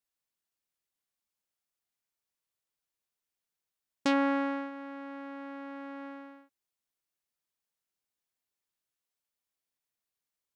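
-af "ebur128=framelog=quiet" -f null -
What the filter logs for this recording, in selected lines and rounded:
Integrated loudness:
  I:         -33.9 LUFS
  Threshold: -44.7 LUFS
Loudness range:
  LRA:        15.4 LU
  Threshold: -57.5 LUFS
  LRA low:   -50.4 LUFS
  LRA high:  -35.0 LUFS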